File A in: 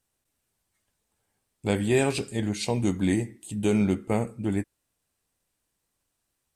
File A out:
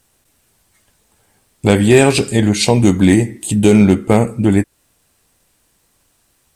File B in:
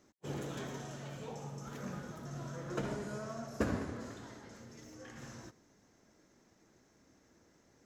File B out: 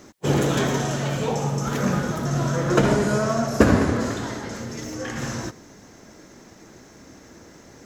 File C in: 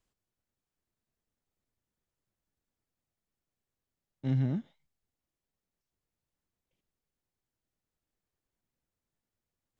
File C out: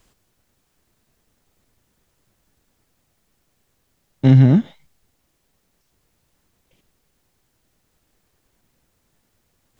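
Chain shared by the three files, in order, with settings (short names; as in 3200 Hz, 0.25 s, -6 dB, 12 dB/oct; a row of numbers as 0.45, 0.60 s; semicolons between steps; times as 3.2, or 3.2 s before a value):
in parallel at +2.5 dB: compressor 10:1, threshold -33 dBFS; on the sum: hard clip -13 dBFS; normalise peaks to -1.5 dBFS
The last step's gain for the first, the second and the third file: +11.5, +13.0, +14.5 dB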